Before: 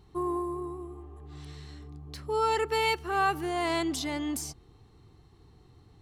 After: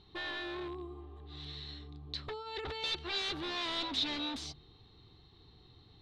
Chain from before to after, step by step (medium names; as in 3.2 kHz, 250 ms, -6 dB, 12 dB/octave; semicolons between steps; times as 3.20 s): hum notches 50/100/150 Hz; 2.28–2.84 s: compressor with a negative ratio -34 dBFS, ratio -0.5; wavefolder -32 dBFS; resonant low-pass 3.8 kHz, resonance Q 6.8; trim -3.5 dB